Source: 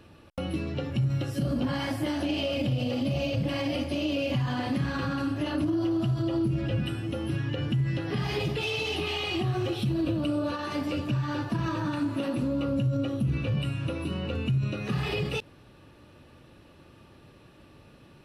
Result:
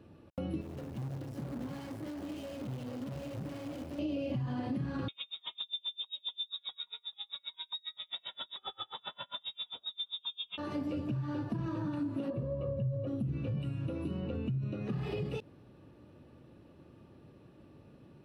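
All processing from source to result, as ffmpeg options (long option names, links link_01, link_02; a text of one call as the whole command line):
ffmpeg -i in.wav -filter_complex "[0:a]asettb=1/sr,asplit=3[link_01][link_02][link_03];[link_01]atrim=end=0.614[link_04];[link_02]atrim=start=0.61:end=3.99,asetpts=PTS-STARTPTS,afade=type=in:duration=0.004:curve=qsin,afade=type=out:start_time=3.376:duration=0.004:curve=qsin,acrusher=bits=5:dc=4:mix=0:aa=0.000001,asoftclip=type=hard:threshold=-32dB[link_05];[link_03]atrim=start=3.986[link_06];[link_04][link_05]acrossfade=duration=0.004:curve1=hsin:curve2=qsin[link_07];[link_07][link_06]acrossfade=duration=0.004:curve1=qsin:curve2=hsin,asettb=1/sr,asplit=3[link_08][link_09][link_10];[link_08]atrim=end=5.084[link_11];[link_09]atrim=start=5.08:end=10.58,asetpts=PTS-STARTPTS,afade=type=in:duration=0.004:curve=qsin,afade=type=out:start_time=5.496:duration=0.004:curve=qsin,equalizer=frequency=470:width=0.5:gain=8.5,lowpass=frequency=3300:width_type=q:width=0.5098,lowpass=frequency=3300:width_type=q:width=0.6013,lowpass=frequency=3300:width_type=q:width=0.9,lowpass=frequency=3300:width_type=q:width=2.563,afreqshift=-3900,aeval=exprs='val(0)*pow(10,-37*(0.5-0.5*cos(2*PI*7.5*n/s))/20)':channel_layout=same[link_12];[link_10]atrim=start=10.576[link_13];[link_11][link_12]acrossfade=duration=0.004:curve1=hsin:curve2=qsin[link_14];[link_14][link_13]acrossfade=duration=0.004:curve1=qsin:curve2=hsin,asettb=1/sr,asplit=3[link_15][link_16][link_17];[link_15]atrim=end=12.304[link_18];[link_16]atrim=start=12.3:end=13.07,asetpts=PTS-STARTPTS,afade=type=in:duration=0.004:curve=qsin,afade=type=out:start_time=0.766:duration=0.004:curve=qsin,lowpass=frequency=1100:poles=1,aecho=1:1:1.8:0.88,atrim=end_sample=33957[link_19];[link_17]atrim=start=13.066[link_20];[link_18][link_19]acrossfade=duration=0.004:curve1=hsin:curve2=qsin[link_21];[link_21][link_20]acrossfade=duration=0.004:curve1=qsin:curve2=hsin,asettb=1/sr,asplit=3[link_22][link_23][link_24];[link_22]atrim=end=14.214[link_25];[link_23]atrim=start=14.21:end=15.02,asetpts=PTS-STARTPTS,afade=type=in:duration=0.004:curve=qsin,afade=type=out:start_time=0.806:duration=0.004:curve=qsin,highpass=57,highshelf=frequency=6300:gain=-6[link_26];[link_24]atrim=start=15.016[link_27];[link_25][link_26]acrossfade=duration=0.004:curve1=hsin:curve2=qsin[link_28];[link_28][link_27]acrossfade=duration=0.004:curve1=qsin:curve2=hsin,highpass=frequency=140:poles=1,tiltshelf=frequency=770:gain=7.5,acompressor=threshold=-27dB:ratio=3,volume=-6dB" out.wav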